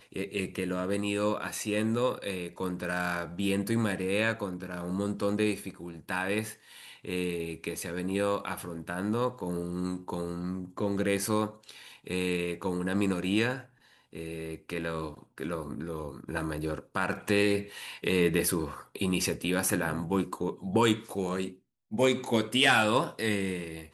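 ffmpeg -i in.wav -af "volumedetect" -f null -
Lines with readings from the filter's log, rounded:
mean_volume: -30.9 dB
max_volume: -10.8 dB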